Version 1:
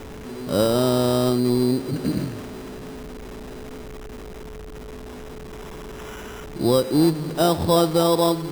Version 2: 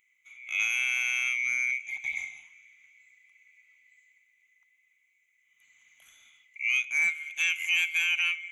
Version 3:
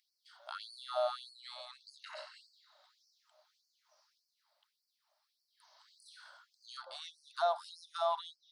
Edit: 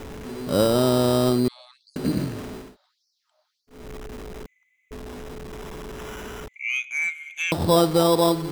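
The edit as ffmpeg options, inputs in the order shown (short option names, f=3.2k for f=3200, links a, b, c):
-filter_complex "[2:a]asplit=2[a][b];[1:a]asplit=2[c][d];[0:a]asplit=5[e][f][g][h][i];[e]atrim=end=1.482[j];[a]atrim=start=1.478:end=1.962[k];[f]atrim=start=1.958:end=2.77[l];[b]atrim=start=2.53:end=3.91[m];[g]atrim=start=3.67:end=4.462[n];[c]atrim=start=4.458:end=4.912[o];[h]atrim=start=4.908:end=6.482[p];[d]atrim=start=6.478:end=7.522[q];[i]atrim=start=7.518[r];[j][k]acrossfade=d=0.004:c1=hsin:c2=hsin[s];[s][l]acrossfade=d=0.004:c1=hsin:c2=hsin[t];[t][m]acrossfade=d=0.24:c1=tri:c2=tri[u];[u][n]acrossfade=d=0.24:c1=tri:c2=tri[v];[v][o]acrossfade=d=0.004:c1=hsin:c2=hsin[w];[w][p]acrossfade=d=0.004:c1=hsin:c2=hsin[x];[x][q]acrossfade=d=0.004:c1=hsin:c2=hsin[y];[y][r]acrossfade=d=0.004:c1=hsin:c2=hsin"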